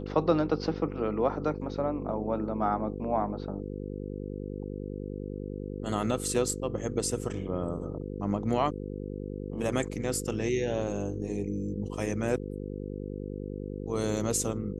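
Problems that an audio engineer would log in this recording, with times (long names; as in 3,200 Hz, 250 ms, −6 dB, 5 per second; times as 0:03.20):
mains buzz 50 Hz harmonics 10 −37 dBFS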